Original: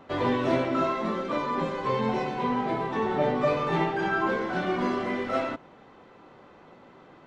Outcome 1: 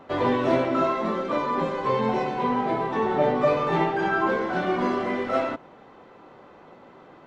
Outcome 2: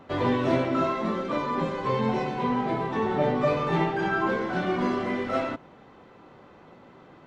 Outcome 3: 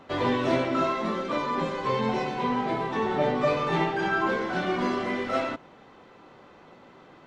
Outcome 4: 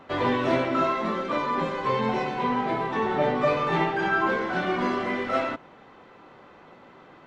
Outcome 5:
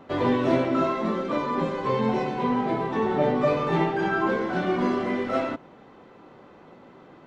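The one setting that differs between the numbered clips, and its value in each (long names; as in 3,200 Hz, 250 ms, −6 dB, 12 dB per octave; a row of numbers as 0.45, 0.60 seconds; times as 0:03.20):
parametric band, centre frequency: 660, 93, 5,700, 1,900, 250 Hertz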